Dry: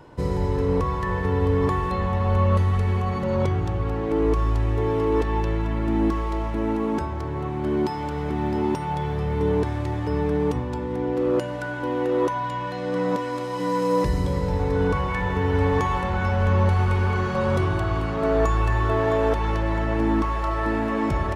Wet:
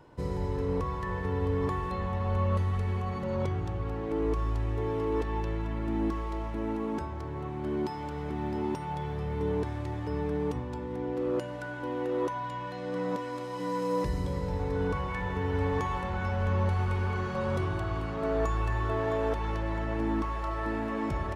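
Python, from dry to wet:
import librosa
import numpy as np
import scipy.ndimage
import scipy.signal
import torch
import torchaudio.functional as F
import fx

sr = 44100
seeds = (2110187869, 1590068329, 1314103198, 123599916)

y = x * 10.0 ** (-8.0 / 20.0)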